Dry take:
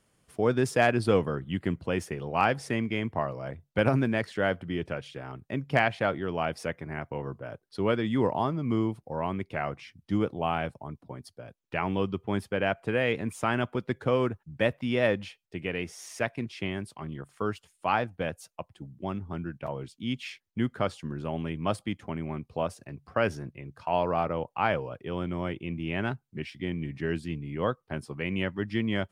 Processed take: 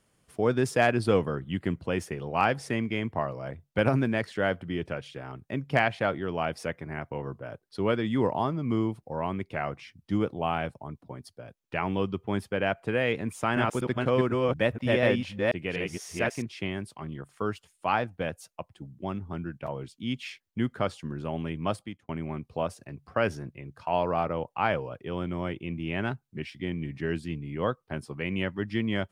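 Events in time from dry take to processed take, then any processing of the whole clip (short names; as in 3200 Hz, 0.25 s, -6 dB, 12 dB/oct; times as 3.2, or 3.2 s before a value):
13.32–16.42 reverse delay 0.244 s, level -1 dB
21.66–22.09 fade out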